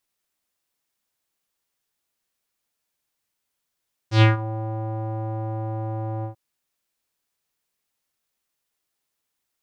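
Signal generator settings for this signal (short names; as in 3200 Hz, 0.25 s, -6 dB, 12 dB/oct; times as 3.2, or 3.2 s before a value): synth note square A2 12 dB/oct, low-pass 760 Hz, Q 2.5, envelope 3 oct, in 0.33 s, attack 0.106 s, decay 0.15 s, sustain -17 dB, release 0.11 s, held 2.13 s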